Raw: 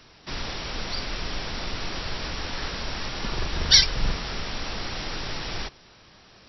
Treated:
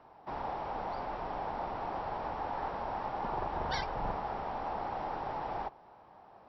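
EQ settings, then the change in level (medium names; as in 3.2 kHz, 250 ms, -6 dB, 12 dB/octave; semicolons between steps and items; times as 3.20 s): band-pass filter 830 Hz, Q 4.1; tilt EQ -3.5 dB/octave; +7.0 dB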